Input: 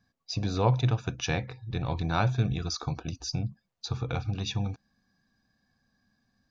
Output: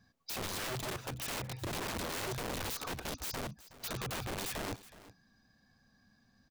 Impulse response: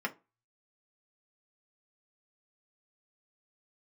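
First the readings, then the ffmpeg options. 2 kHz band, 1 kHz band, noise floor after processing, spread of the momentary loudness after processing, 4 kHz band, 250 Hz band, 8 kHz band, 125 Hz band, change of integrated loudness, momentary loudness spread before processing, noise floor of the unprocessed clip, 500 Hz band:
-2.5 dB, -7.0 dB, -70 dBFS, 6 LU, -4.0 dB, -10.0 dB, no reading, -16.0 dB, -8.0 dB, 10 LU, -79 dBFS, -6.5 dB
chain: -filter_complex "[0:a]acompressor=threshold=0.0224:ratio=16,aeval=exprs='(mod(75*val(0)+1,2)-1)/75':c=same,asplit=2[s0][s1];[s1]aecho=0:1:369:0.133[s2];[s0][s2]amix=inputs=2:normalize=0,volume=1.58"

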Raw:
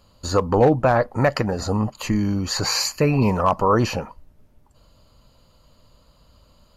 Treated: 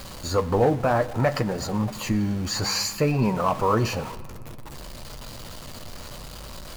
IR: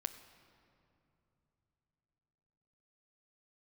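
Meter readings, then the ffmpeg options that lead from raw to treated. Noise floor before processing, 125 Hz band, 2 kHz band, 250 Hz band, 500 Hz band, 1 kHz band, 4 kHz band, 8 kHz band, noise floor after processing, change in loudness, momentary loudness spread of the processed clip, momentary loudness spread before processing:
-57 dBFS, -3.0 dB, -3.5 dB, -3.5 dB, -4.0 dB, -4.0 dB, -3.0 dB, -2.5 dB, -39 dBFS, -3.5 dB, 18 LU, 7 LU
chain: -filter_complex "[0:a]aeval=exprs='val(0)+0.5*0.0398*sgn(val(0))':c=same,flanger=delay=5.2:depth=6.8:regen=-52:speed=0.61:shape=sinusoidal,asplit=2[s0][s1];[1:a]atrim=start_sample=2205[s2];[s1][s2]afir=irnorm=-1:irlink=0,volume=1.19[s3];[s0][s3]amix=inputs=2:normalize=0,volume=0.447"

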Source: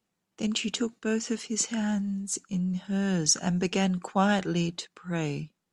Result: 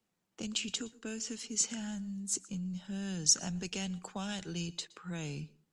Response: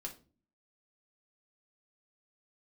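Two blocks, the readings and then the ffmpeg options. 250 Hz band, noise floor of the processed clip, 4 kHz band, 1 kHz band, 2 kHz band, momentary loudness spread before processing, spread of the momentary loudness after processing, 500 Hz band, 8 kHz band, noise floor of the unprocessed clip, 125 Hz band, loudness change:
-11.0 dB, -82 dBFS, -3.5 dB, -16.5 dB, -10.5 dB, 8 LU, 13 LU, -14.5 dB, -2.0 dB, -81 dBFS, -10.0 dB, -7.0 dB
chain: -filter_complex "[0:a]acrossover=split=120|3000[s0][s1][s2];[s1]acompressor=threshold=0.0112:ratio=6[s3];[s0][s3][s2]amix=inputs=3:normalize=0,asplit=2[s4][s5];[1:a]atrim=start_sample=2205,asetrate=61740,aresample=44100,adelay=117[s6];[s5][s6]afir=irnorm=-1:irlink=0,volume=0.15[s7];[s4][s7]amix=inputs=2:normalize=0,volume=0.794"

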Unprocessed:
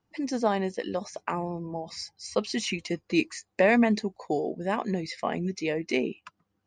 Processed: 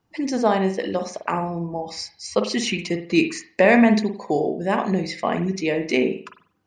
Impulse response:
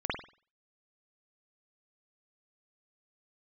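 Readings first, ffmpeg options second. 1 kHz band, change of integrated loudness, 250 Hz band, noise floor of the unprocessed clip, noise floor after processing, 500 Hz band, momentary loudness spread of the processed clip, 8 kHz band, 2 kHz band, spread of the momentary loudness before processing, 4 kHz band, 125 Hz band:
+7.0 dB, +7.0 dB, +7.0 dB, -78 dBFS, -64 dBFS, +6.5 dB, 11 LU, +5.5 dB, +6.5 dB, 12 LU, +6.0 dB, +7.0 dB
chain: -filter_complex "[0:a]asplit=2[s0][s1];[1:a]atrim=start_sample=2205[s2];[s1][s2]afir=irnorm=-1:irlink=0,volume=0.266[s3];[s0][s3]amix=inputs=2:normalize=0,volume=1.58"

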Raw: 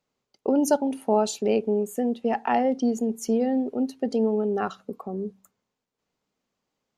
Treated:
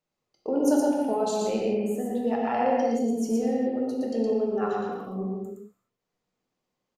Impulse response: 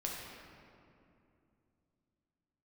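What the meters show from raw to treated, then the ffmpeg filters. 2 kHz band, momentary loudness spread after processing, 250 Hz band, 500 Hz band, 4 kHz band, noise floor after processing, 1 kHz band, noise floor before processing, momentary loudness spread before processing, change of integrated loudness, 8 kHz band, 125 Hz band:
-2.0 dB, 9 LU, -1.0 dB, -1.0 dB, -2.5 dB, -84 dBFS, -1.0 dB, -83 dBFS, 10 LU, -1.0 dB, -3.5 dB, no reading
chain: -filter_complex "[0:a]aecho=1:1:116:0.708[s0];[1:a]atrim=start_sample=2205,afade=t=out:st=0.36:d=0.01,atrim=end_sample=16317[s1];[s0][s1]afir=irnorm=-1:irlink=0,volume=0.596"

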